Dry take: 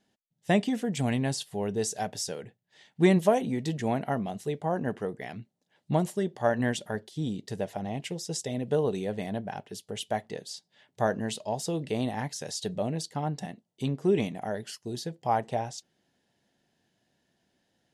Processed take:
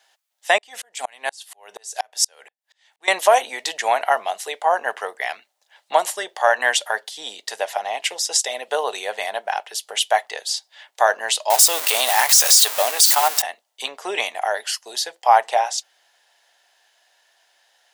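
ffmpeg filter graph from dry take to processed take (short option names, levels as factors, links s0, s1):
-filter_complex "[0:a]asettb=1/sr,asplit=3[s0][s1][s2];[s0]atrim=end=0.584[s3];[s1]atrim=start=0.58:end=3.08,asetpts=PTS-STARTPTS,afade=t=in:d=0.004:c=qsin,afade=t=out:st=2.496:d=0.004:c=qsin,equalizer=f=9300:t=o:w=1.6:g=3,aeval=exprs='val(0)*pow(10,-38*if(lt(mod(-4.2*n/s,1),2*abs(-4.2)/1000),1-mod(-4.2*n/s,1)/(2*abs(-4.2)/1000),(mod(-4.2*n/s,1)-2*abs(-4.2)/1000)/(1-2*abs(-4.2)/1000))/20)':c=same[s4];[s2]atrim=start=3.076[s5];[s3][s4]acrossfade=d=0.004:c1=hsin:c2=qsin[s6];[s6][s5]acrossfade=d=0.004:c1=qsin:c2=hsin,asettb=1/sr,asplit=3[s7][s8][s9];[s7]atrim=end=11.504[s10];[s8]atrim=start=11.5:end=13.42,asetpts=PTS-STARTPTS,afade=t=in:d=0.004:c=qsin,afade=t=out:st=1.916:d=0.004:c=qsin,aeval=exprs='val(0)+0.5*0.0141*sgn(val(0))':c=same,aemphasis=mode=production:type=75kf[s11];[s9]atrim=start=13.416[s12];[s10][s11]acrossfade=d=0.004:c1=hsin:c2=qsin[s13];[s13][s12]acrossfade=d=0.004:c1=qsin:c2=hsin,highpass=f=730:w=0.5412,highpass=f=730:w=1.3066,alimiter=level_in=7.5:limit=0.891:release=50:level=0:latency=1,volume=0.891"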